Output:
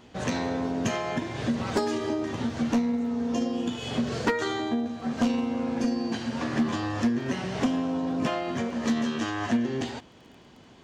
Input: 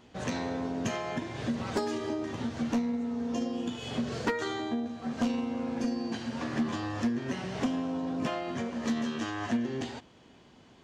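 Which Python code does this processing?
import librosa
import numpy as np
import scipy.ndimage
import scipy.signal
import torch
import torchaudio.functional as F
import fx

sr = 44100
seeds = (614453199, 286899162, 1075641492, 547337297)

y = fx.dmg_crackle(x, sr, seeds[0], per_s=13.0, level_db=-50.0)
y = y * 10.0 ** (4.5 / 20.0)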